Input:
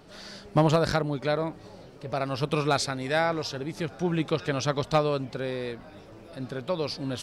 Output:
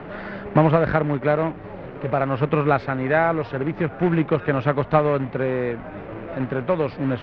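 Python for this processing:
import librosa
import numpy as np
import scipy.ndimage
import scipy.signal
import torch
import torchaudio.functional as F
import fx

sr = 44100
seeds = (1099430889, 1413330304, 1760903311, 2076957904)

y = fx.quant_companded(x, sr, bits=4)
y = scipy.signal.sosfilt(scipy.signal.butter(4, 2200.0, 'lowpass', fs=sr, output='sos'), y)
y = fx.band_squash(y, sr, depth_pct=40)
y = y * 10.0 ** (6.5 / 20.0)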